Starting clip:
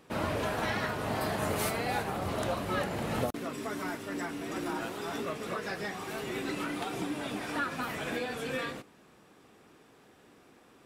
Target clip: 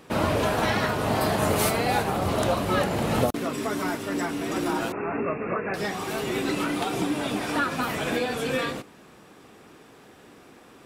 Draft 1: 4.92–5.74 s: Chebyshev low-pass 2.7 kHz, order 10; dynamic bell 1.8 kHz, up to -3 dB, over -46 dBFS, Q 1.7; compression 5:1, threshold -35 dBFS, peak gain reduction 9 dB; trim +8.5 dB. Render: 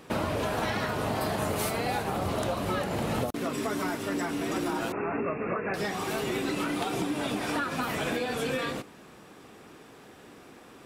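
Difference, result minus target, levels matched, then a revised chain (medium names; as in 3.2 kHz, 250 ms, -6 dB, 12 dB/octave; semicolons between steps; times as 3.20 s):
compression: peak gain reduction +9 dB
4.92–5.74 s: Chebyshev low-pass 2.7 kHz, order 10; dynamic bell 1.8 kHz, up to -3 dB, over -46 dBFS, Q 1.7; trim +8.5 dB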